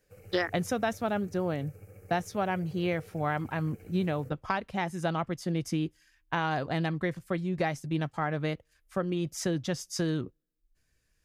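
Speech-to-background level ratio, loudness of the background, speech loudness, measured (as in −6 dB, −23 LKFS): 20.0 dB, −52.0 LKFS, −32.0 LKFS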